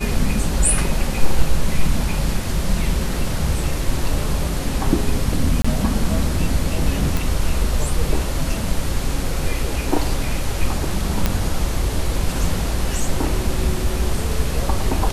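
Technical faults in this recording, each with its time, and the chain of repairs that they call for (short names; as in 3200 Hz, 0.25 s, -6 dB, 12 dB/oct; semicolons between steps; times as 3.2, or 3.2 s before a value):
5.62–5.64 gap 25 ms
7.17 pop
11.26 pop -3 dBFS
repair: de-click; interpolate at 5.62, 25 ms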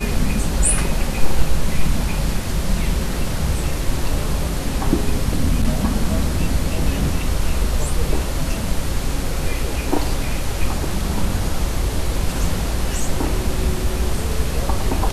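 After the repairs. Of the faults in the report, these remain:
none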